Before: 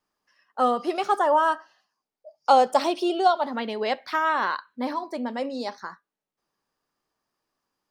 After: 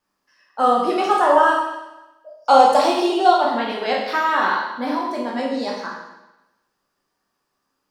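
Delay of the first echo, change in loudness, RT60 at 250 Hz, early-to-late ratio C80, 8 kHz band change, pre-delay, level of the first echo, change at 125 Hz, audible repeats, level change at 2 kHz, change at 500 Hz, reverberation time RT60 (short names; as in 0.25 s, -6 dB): none, +6.0 dB, 1.0 s, 5.0 dB, +6.5 dB, 15 ms, none, n/a, none, +7.0 dB, +6.0 dB, 1.0 s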